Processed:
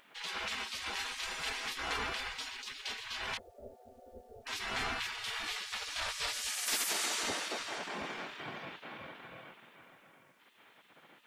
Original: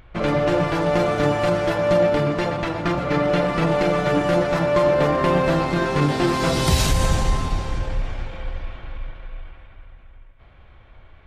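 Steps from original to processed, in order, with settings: 3.37–4.47 s: inverse Chebyshev low-pass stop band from 970 Hz, stop band 50 dB; spectral gate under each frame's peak -25 dB weak; in parallel at -0.5 dB: peak limiter -26.5 dBFS, peak gain reduction 10 dB; on the sum: bit crusher 11-bit; trim -6.5 dB

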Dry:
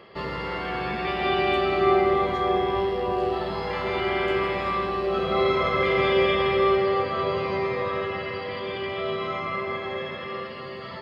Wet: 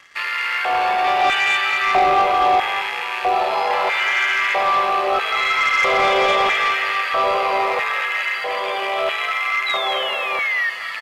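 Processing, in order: rattle on loud lows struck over -37 dBFS, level -26 dBFS; painted sound fall, 9.66–10.70 s, 1.8–4 kHz -35 dBFS; LFO high-pass square 0.77 Hz 720–1700 Hz; waveshaping leveller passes 2; on a send: frequency-shifting echo 216 ms, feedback 60%, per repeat +52 Hz, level -14 dB; on the sum: resampled via 32 kHz

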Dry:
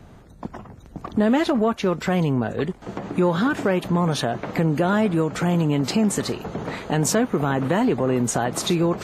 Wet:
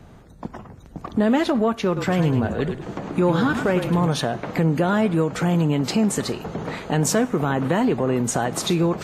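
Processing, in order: 1.86–4.07 s: frequency-shifting echo 104 ms, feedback 43%, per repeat -34 Hz, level -7.5 dB; reverberation RT60 0.90 s, pre-delay 3 ms, DRR 17.5 dB

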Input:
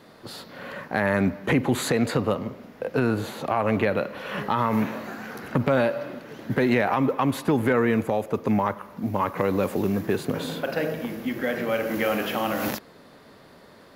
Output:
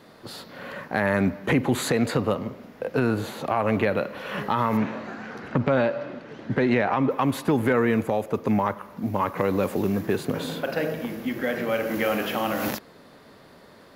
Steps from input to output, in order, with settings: 4.77–7.11 s: distance through air 92 m

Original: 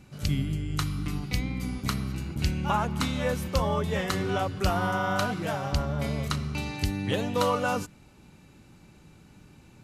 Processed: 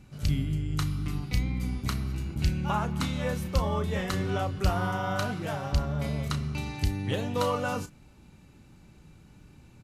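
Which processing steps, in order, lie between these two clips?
bass shelf 110 Hz +7.5 dB; doubling 33 ms -11 dB; trim -3.5 dB

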